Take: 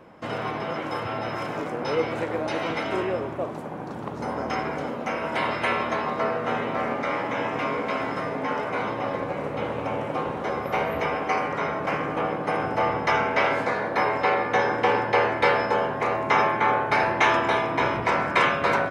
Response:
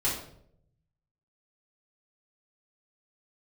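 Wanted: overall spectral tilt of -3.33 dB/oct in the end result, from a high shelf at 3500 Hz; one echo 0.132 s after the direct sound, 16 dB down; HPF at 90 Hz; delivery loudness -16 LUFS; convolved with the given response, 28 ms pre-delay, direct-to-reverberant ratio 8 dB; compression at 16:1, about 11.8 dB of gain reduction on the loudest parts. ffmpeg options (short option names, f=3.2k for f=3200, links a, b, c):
-filter_complex "[0:a]highpass=90,highshelf=f=3.5k:g=8,acompressor=threshold=-26dB:ratio=16,aecho=1:1:132:0.158,asplit=2[a][b];[1:a]atrim=start_sample=2205,adelay=28[c];[b][c]afir=irnorm=-1:irlink=0,volume=-16.5dB[d];[a][d]amix=inputs=2:normalize=0,volume=14dB"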